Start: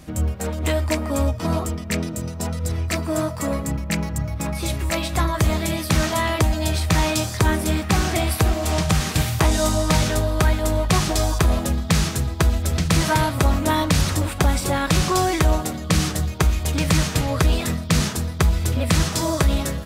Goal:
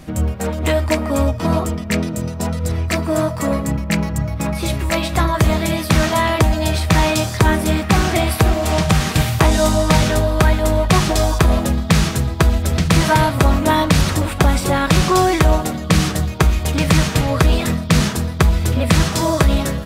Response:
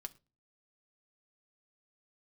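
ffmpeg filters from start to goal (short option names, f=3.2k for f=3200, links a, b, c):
-filter_complex "[0:a]asplit=2[a][b];[1:a]atrim=start_sample=2205,lowpass=4.7k[c];[b][c]afir=irnorm=-1:irlink=0,volume=-1.5dB[d];[a][d]amix=inputs=2:normalize=0,volume=2dB"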